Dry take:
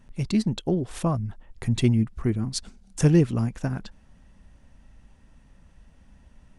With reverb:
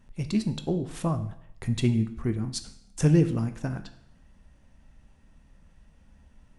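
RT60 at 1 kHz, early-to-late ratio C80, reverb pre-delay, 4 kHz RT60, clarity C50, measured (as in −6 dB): 0.70 s, 15.5 dB, 13 ms, 0.65 s, 12.5 dB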